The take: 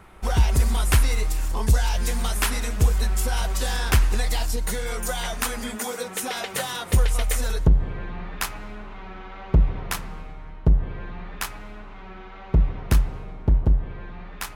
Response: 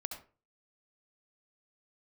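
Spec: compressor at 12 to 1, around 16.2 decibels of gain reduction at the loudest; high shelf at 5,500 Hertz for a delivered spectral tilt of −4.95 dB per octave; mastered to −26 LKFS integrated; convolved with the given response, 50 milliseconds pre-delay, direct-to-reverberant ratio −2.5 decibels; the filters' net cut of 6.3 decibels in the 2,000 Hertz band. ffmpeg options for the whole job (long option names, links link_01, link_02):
-filter_complex "[0:a]equalizer=frequency=2000:width_type=o:gain=-7.5,highshelf=frequency=5500:gain=-7,acompressor=threshold=-29dB:ratio=12,asplit=2[link_01][link_02];[1:a]atrim=start_sample=2205,adelay=50[link_03];[link_02][link_03]afir=irnorm=-1:irlink=0,volume=3.5dB[link_04];[link_01][link_04]amix=inputs=2:normalize=0,volume=6dB"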